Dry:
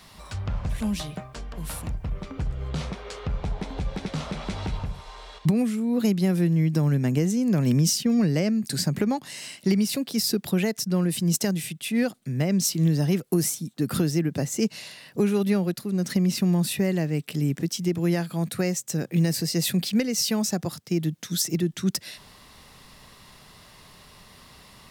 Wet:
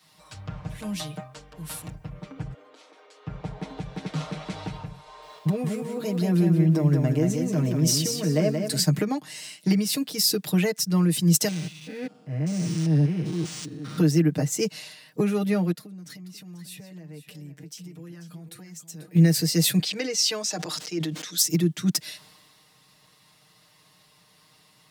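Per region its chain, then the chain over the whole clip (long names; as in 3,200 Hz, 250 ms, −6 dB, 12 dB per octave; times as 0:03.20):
0:02.53–0:03.27: elliptic high-pass filter 260 Hz + downward compressor 12 to 1, threshold −41 dBFS
0:05.04–0:08.79: downward compressor 2.5 to 1, threshold −24 dBFS + hollow resonant body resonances 380/620/1,000 Hz, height 8 dB, ringing for 40 ms + feedback echo at a low word length 181 ms, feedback 35%, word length 9 bits, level −4.5 dB
0:11.48–0:13.98: spectrum averaged block by block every 200 ms + transient designer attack −7 dB, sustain −3 dB + linearly interpolated sample-rate reduction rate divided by 3×
0:15.72–0:19.15: flanger 1.3 Hz, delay 3.7 ms, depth 3.7 ms, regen +49% + downward compressor 10 to 1, threshold −35 dBFS + single-tap delay 490 ms −10.5 dB
0:19.79–0:21.38: three-way crossover with the lows and the highs turned down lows −18 dB, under 290 Hz, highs −17 dB, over 7,900 Hz + level that may fall only so fast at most 38 dB per second
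whole clip: high-pass filter 98 Hz; comb filter 6.5 ms, depth 82%; multiband upward and downward expander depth 40%; level −1.5 dB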